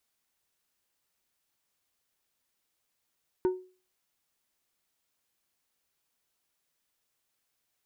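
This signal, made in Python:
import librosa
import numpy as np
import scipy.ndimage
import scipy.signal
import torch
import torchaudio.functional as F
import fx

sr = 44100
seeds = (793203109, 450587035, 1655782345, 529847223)

y = fx.strike_glass(sr, length_s=0.89, level_db=-20, body='plate', hz=369.0, decay_s=0.37, tilt_db=12.0, modes=5)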